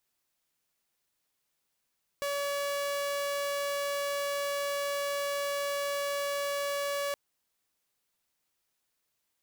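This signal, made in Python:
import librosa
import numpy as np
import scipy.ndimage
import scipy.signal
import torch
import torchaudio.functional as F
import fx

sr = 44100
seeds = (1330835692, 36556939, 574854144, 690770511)

y = 10.0 ** (-27.5 / 20.0) * (2.0 * np.mod(568.0 * (np.arange(round(4.92 * sr)) / sr), 1.0) - 1.0)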